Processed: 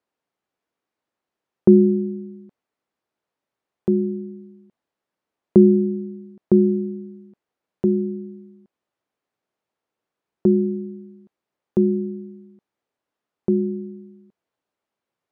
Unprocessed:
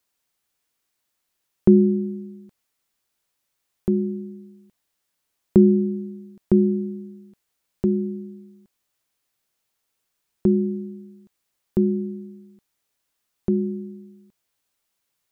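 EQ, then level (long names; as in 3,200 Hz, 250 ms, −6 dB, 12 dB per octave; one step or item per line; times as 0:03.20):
resonant band-pass 420 Hz, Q 0.55
+3.5 dB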